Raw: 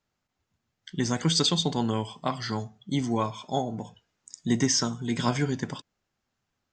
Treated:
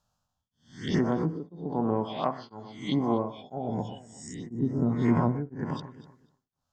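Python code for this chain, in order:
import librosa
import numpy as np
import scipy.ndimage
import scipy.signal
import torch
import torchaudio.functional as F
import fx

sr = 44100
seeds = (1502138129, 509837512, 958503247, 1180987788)

y = fx.spec_swells(x, sr, rise_s=0.6)
y = fx.env_lowpass_down(y, sr, base_hz=360.0, full_db=-19.0)
y = fx.low_shelf(y, sr, hz=190.0, db=-12.0, at=(0.98, 3.38))
y = fx.env_phaser(y, sr, low_hz=360.0, high_hz=3600.0, full_db=-26.5)
y = fx.echo_alternate(y, sr, ms=123, hz=1700.0, feedback_pct=50, wet_db=-13.0)
y = y * np.abs(np.cos(np.pi * 1.0 * np.arange(len(y)) / sr))
y = F.gain(torch.from_numpy(y), 5.0).numpy()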